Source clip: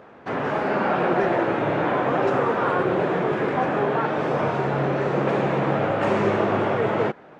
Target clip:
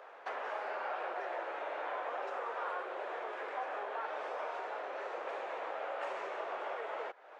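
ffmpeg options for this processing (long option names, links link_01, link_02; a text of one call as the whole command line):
ffmpeg -i in.wav -af "acompressor=threshold=-34dB:ratio=3,highpass=frequency=530:width=0.5412,highpass=frequency=530:width=1.3066,volume=-3.5dB" out.wav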